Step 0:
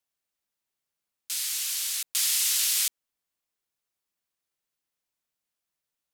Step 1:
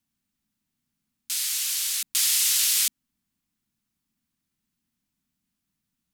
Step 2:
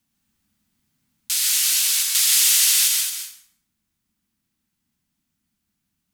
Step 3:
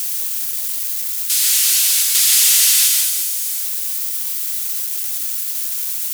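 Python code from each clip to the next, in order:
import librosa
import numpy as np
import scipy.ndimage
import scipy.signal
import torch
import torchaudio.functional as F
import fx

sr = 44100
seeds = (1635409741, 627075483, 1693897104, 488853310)

y1 = fx.low_shelf_res(x, sr, hz=330.0, db=12.5, q=3.0)
y1 = F.gain(torch.from_numpy(y1), 3.0).numpy()
y2 = fx.rider(y1, sr, range_db=10, speed_s=2.0)
y2 = y2 + 10.0 ** (-8.5 / 20.0) * np.pad(y2, (int(218 * sr / 1000.0), 0))[:len(y2)]
y2 = fx.rev_plate(y2, sr, seeds[0], rt60_s=0.68, hf_ratio=0.75, predelay_ms=110, drr_db=0.5)
y2 = F.gain(torch.from_numpy(y2), 4.0).numpy()
y3 = y2 + 0.5 * 10.0 ** (-19.5 / 20.0) * np.diff(np.sign(y2), prepend=np.sign(y2[:1]))
y3 = F.gain(torch.from_numpy(y3), 2.0).numpy()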